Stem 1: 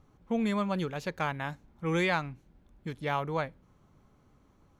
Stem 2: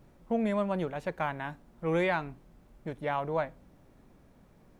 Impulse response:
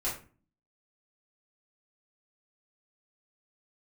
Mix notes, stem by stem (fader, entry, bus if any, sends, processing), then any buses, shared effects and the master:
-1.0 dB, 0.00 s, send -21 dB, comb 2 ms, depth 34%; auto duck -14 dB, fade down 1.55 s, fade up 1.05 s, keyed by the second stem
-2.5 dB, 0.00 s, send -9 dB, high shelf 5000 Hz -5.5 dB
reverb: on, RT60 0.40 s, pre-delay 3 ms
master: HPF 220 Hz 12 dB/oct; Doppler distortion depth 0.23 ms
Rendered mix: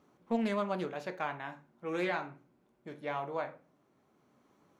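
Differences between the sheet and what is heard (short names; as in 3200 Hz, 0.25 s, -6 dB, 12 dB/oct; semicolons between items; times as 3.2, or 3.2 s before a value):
stem 1: missing comb 2 ms, depth 34%; stem 2 -2.5 dB -> -12.5 dB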